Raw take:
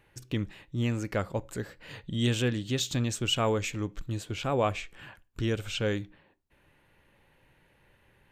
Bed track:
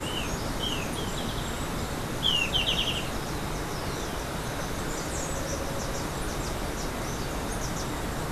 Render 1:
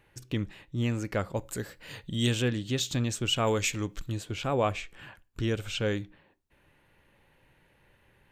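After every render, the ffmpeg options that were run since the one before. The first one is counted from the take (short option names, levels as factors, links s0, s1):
-filter_complex "[0:a]asettb=1/sr,asplit=3[s0][s1][s2];[s0]atrim=end=1.364[s3];[s1]atrim=start=1.36:end=2.32,asetpts=PTS-STARTPTS,afade=t=in:d=0.004:c=qsin,afade=t=out:st=0.956:d=0.004:c=qsin,aemphasis=mode=production:type=cd[s4];[s2]atrim=start=2.316[s5];[s3][s4]acrossfade=d=0.004:c1=hsin:c2=qsin[s6];[s6][s5]acrossfade=d=0.004:c1=qsin:c2=hsin,asettb=1/sr,asplit=3[s7][s8][s9];[s7]atrim=end=3.474[s10];[s8]atrim=start=3.47:end=4.12,asetpts=PTS-STARTPTS,afade=t=in:d=0.004:c=qsin,afade=t=out:st=0.646:d=0.004:c=qsin,highshelf=f=2300:g=8.5[s11];[s9]atrim=start=4.116[s12];[s10][s11]acrossfade=d=0.004:c1=hsin:c2=qsin[s13];[s13][s12]acrossfade=d=0.004:c1=qsin:c2=hsin"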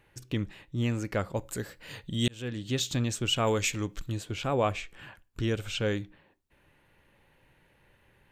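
-filter_complex "[0:a]asplit=2[s0][s1];[s0]atrim=end=2.28,asetpts=PTS-STARTPTS,afade=t=out:st=2.276:d=0.004:c=hsin[s2];[s1]atrim=start=2.28,asetpts=PTS-STARTPTS,afade=t=in:d=0.46[s3];[s2][s3]concat=n=2:v=0:a=1"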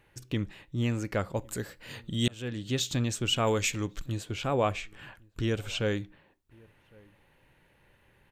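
-filter_complex "[0:a]asplit=2[s0][s1];[s1]adelay=1108,volume=0.0447,highshelf=f=4000:g=-24.9[s2];[s0][s2]amix=inputs=2:normalize=0"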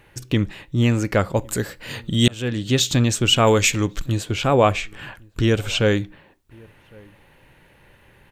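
-af "volume=3.55"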